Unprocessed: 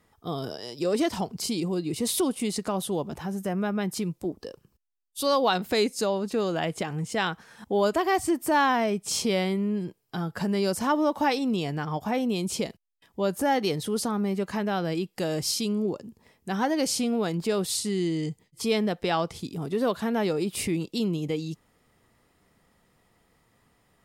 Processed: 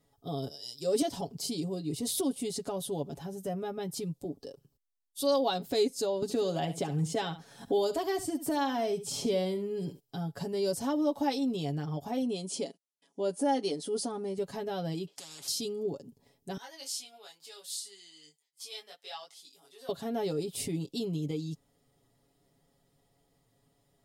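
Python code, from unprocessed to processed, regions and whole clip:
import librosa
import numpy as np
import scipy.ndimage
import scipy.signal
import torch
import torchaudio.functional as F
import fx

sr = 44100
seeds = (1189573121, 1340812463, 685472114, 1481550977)

y = fx.chain(x, sr, fx.highpass(hz=53.0, slope=12),
    fx.high_shelf(hz=3800.0, db=7.5),
    fx.band_widen(depth_pct=100), at=(0.48, 1.02))
y = fx.chain(y, sr, fx.echo_single(ms=70, db=-14.5),
    fx.band_squash(depth_pct=70), at=(6.22, 10.0))
y = fx.chain(y, sr, fx.resample_bad(factor=2, down='none', up='zero_stuff'),
    fx.brickwall_bandpass(low_hz=170.0, high_hz=11000.0),
    fx.notch(hz=3800.0, q=17.0), at=(12.22, 14.38))
y = fx.chain(y, sr, fx.bandpass_edges(low_hz=430.0, high_hz=4800.0),
    fx.spectral_comp(ratio=10.0), at=(15.07, 15.48))
y = fx.chain(y, sr, fx.highpass(hz=1400.0, slope=12),
    fx.detune_double(cents=13), at=(16.57, 19.89))
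y = fx.band_shelf(y, sr, hz=1600.0, db=-9.0, octaves=1.7)
y = y + 0.76 * np.pad(y, (int(7.2 * sr / 1000.0), 0))[:len(y)]
y = y * 10.0 ** (-6.5 / 20.0)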